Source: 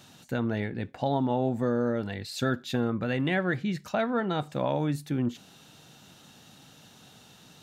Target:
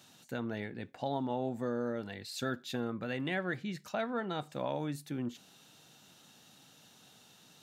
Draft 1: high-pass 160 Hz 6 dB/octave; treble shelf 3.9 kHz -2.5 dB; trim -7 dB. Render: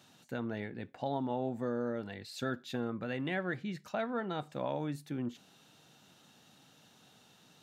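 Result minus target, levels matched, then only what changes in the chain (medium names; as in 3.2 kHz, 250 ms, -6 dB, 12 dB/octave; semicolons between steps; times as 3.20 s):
8 kHz band -5.0 dB
change: treble shelf 3.9 kHz +4 dB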